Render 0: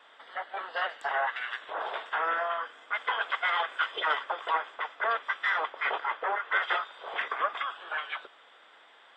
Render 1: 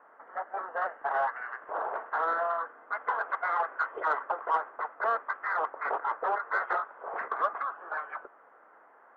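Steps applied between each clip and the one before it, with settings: inverse Chebyshev low-pass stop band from 3.7 kHz, stop band 50 dB; in parallel at -10 dB: saturation -27 dBFS, distortion -13 dB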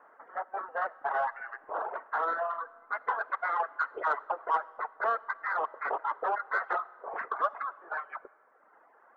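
reverb removal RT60 1.2 s; on a send at -21 dB: reverberation RT60 2.0 s, pre-delay 20 ms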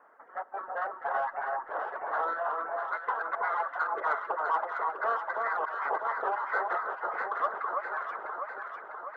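echo whose repeats swap between lows and highs 325 ms, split 1.3 kHz, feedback 78%, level -2 dB; trim -1.5 dB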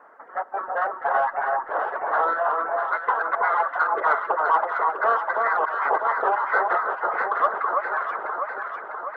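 low-pass 4 kHz 6 dB/octave; trim +9 dB

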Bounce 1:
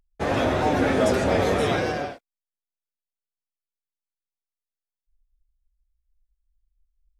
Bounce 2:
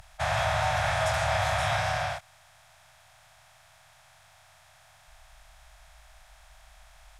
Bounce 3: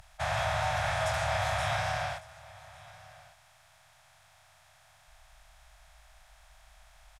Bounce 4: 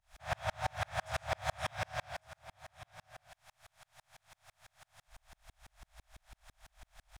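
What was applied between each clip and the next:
spectral levelling over time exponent 0.4; inverse Chebyshev band-stop 210–460 Hz, stop band 40 dB; trim -5 dB
delay 1151 ms -21 dB; trim -3.5 dB
companding laws mixed up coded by mu; sawtooth tremolo in dB swelling 6 Hz, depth 39 dB

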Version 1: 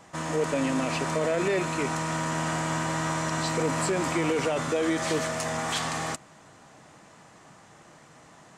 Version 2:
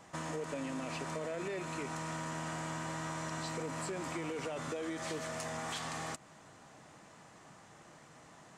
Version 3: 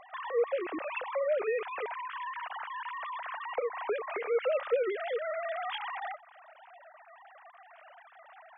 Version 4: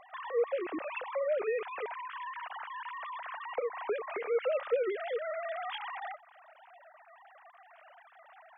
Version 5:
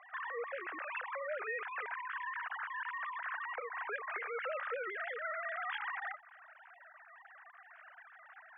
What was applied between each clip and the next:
compression 4:1, threshold -33 dBFS, peak gain reduction 9.5 dB; trim -4.5 dB
formants replaced by sine waves; trim +6 dB
dynamic bell 200 Hz, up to +4 dB, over -44 dBFS, Q 0.72; trim -2.5 dB
band-pass filter 1.6 kHz, Q 3; trim +7 dB

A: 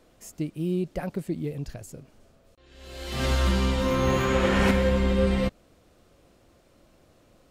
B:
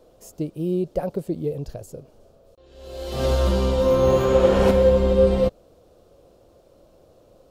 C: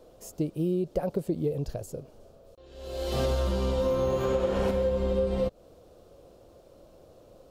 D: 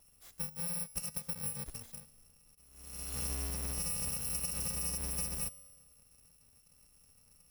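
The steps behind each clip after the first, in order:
graphic EQ 250/500/2000/8000 Hz -4/+9/-11/-4 dB; trim +2.5 dB
compression 10:1, threshold -23 dBFS, peak gain reduction 12.5 dB
bit-reversed sample order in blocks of 128 samples; feedback comb 77 Hz, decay 1.6 s, harmonics all, mix 50%; trim -5 dB

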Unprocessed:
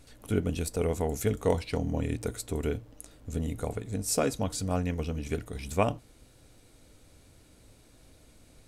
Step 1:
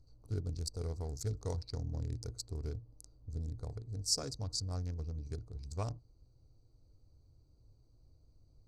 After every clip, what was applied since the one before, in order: local Wiener filter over 25 samples; FFT filter 130 Hz 0 dB, 200 Hz -15 dB, 360 Hz -9 dB, 590 Hz -13 dB, 1.2 kHz -9 dB, 3 kHz -19 dB, 4.7 kHz +12 dB, 11 kHz -9 dB; trim -4.5 dB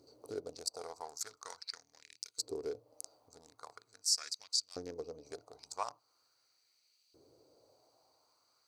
compression 2:1, threshold -48 dBFS, peak gain reduction 11.5 dB; LFO high-pass saw up 0.42 Hz 360–3000 Hz; trim +11 dB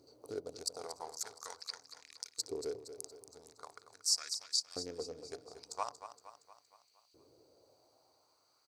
feedback delay 233 ms, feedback 53%, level -11.5 dB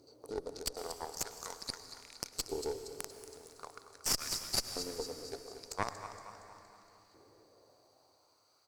Chebyshev shaper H 4 -10 dB, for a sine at -17 dBFS; on a send at -10.5 dB: reverberation RT60 3.6 s, pre-delay 93 ms; on the sum: transformer saturation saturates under 370 Hz; trim +2 dB

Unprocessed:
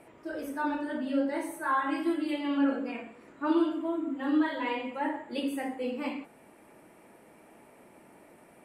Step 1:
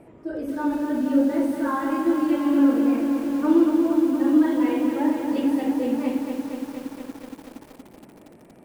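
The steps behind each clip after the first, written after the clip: tilt shelf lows +8 dB, about 640 Hz; bit-crushed delay 234 ms, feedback 80%, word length 8-bit, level -6 dB; trim +3.5 dB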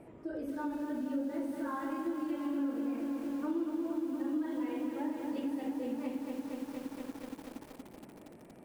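compression 2.5:1, threshold -33 dBFS, peak gain reduction 13.5 dB; trim -4.5 dB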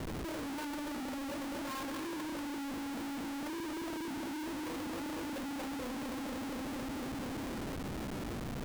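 Schmitt trigger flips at -52.5 dBFS; trim -2.5 dB

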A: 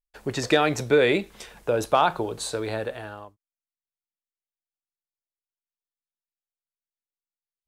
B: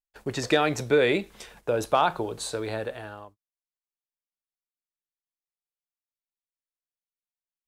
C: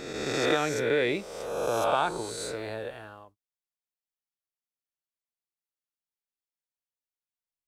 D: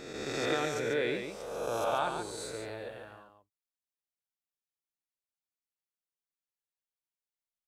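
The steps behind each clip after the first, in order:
gate -48 dBFS, range -9 dB; trim -2 dB
reverse spectral sustain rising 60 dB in 1.55 s; trim -7 dB
delay 141 ms -6.5 dB; trim -6 dB

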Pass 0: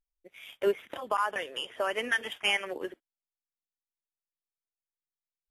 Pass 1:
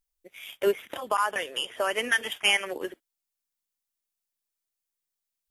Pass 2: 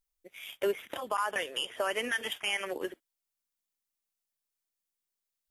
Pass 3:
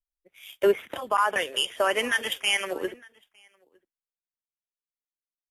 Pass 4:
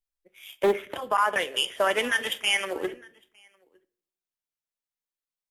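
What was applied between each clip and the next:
treble shelf 4.5 kHz +9 dB; trim +2.5 dB
peak limiter -18.5 dBFS, peak gain reduction 9.5 dB; trim -2 dB
delay 908 ms -19 dB; three bands expanded up and down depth 70%; trim +6 dB
on a send at -14.5 dB: reverberation RT60 0.55 s, pre-delay 6 ms; on the sum: loudspeaker Doppler distortion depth 0.25 ms

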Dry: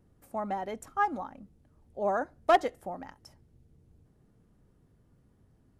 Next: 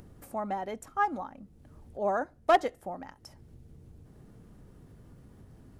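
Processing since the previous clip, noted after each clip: upward compressor, threshold -41 dBFS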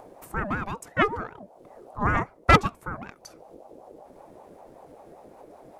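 Chebyshev shaper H 2 -7 dB, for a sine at -14 dBFS; ring modulator with a swept carrier 550 Hz, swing 30%, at 5.2 Hz; trim +7 dB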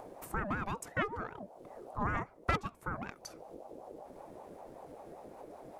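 compression 3:1, threshold -31 dBFS, peak gain reduction 15.5 dB; trim -1.5 dB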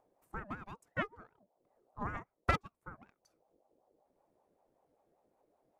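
upward expansion 2.5:1, over -45 dBFS; trim +2.5 dB

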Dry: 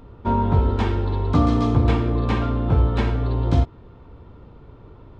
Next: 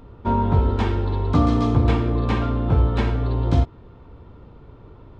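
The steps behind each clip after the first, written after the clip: no audible change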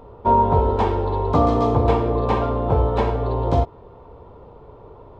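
high-order bell 660 Hz +11 dB; trim -2.5 dB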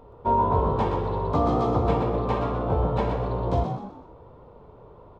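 frequency-shifting echo 124 ms, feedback 38%, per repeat +66 Hz, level -6.5 dB; trim -6 dB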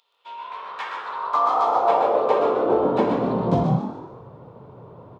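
frequency-shifting echo 148 ms, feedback 36%, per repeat +100 Hz, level -10 dB; high-pass sweep 3.5 kHz -> 130 Hz, 0.05–3.89 s; trim +3 dB

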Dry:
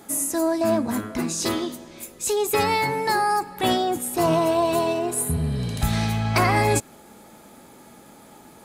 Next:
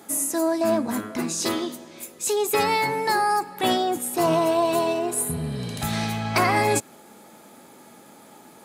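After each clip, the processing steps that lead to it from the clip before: Bessel high-pass 170 Hz, order 2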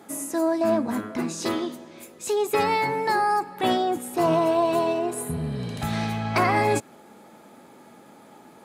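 treble shelf 4.1 kHz -10 dB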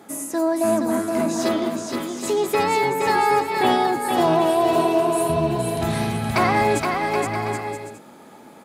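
bouncing-ball echo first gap 470 ms, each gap 0.65×, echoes 5; trim +2 dB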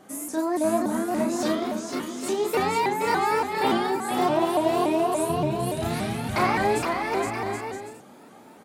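doubling 33 ms -3 dB; vibrato with a chosen wave saw up 3.5 Hz, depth 160 cents; trim -5.5 dB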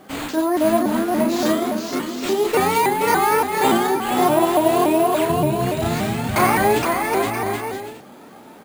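careless resampling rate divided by 4×, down none, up hold; trim +6 dB

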